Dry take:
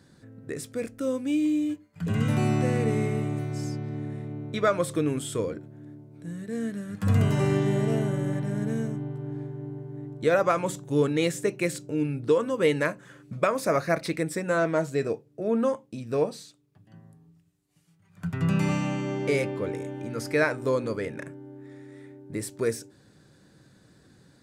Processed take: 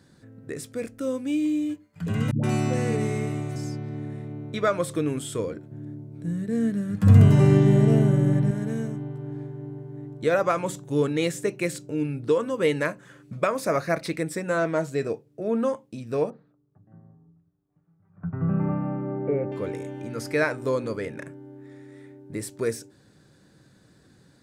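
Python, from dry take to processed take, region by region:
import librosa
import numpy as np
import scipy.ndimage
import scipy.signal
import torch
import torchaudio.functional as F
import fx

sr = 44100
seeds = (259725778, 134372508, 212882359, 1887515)

y = fx.chain(x, sr, fx.peak_eq(hz=6400.0, db=5.0, octaves=1.1),
    fx.dispersion(late='highs', ms=125.0, hz=390.0), at=(2.31, 3.56))
y = fx.chain(y, sr, fx.highpass(hz=71.0, slope=24),
    fx.low_shelf(hz=360.0, db=10.0), at=(5.71, 8.51))
y = fx.chain(y, sr, fx.lowpass(hz=1300.0, slope=24),
    fx.notch(hz=990.0, q=14.0), at=(16.3, 19.52))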